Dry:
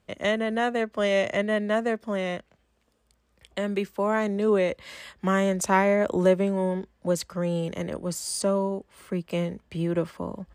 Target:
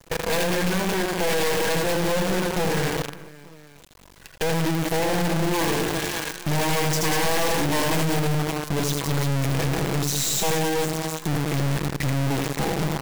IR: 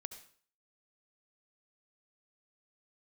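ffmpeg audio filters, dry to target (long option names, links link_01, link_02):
-filter_complex "[0:a]bandreject=frequency=106.4:width_type=h:width=4,bandreject=frequency=212.8:width_type=h:width=4,bandreject=frequency=319.2:width_type=h:width=4,asetrate=35721,aresample=44100,agate=range=-23dB:threshold=-48dB:ratio=16:detection=peak,aecho=1:1:6.1:0.92,asplit=2[link_01][link_02];[link_02]acompressor=threshold=-26dB:ratio=6,volume=2dB[link_03];[link_01][link_03]amix=inputs=2:normalize=0,aeval=exprs='(mod(2.51*val(0)+1,2)-1)/2.51':channel_layout=same,acompressor=mode=upward:threshold=-18dB:ratio=2.5,asplit=2[link_04][link_05];[link_05]aecho=0:1:80|192|348.8|568.3|875.6:0.631|0.398|0.251|0.158|0.1[link_06];[link_04][link_06]amix=inputs=2:normalize=0,adynamicequalizer=threshold=0.0282:dfrequency=2700:dqfactor=0.95:tfrequency=2700:tqfactor=0.95:attack=5:release=100:ratio=0.375:range=2:mode=cutabove:tftype=bell,aeval=exprs='(tanh(12.6*val(0)+0.7)-tanh(0.7))/12.6':channel_layout=same,asuperstop=centerf=1300:order=20:qfactor=4.3,acrusher=bits=5:dc=4:mix=0:aa=0.000001"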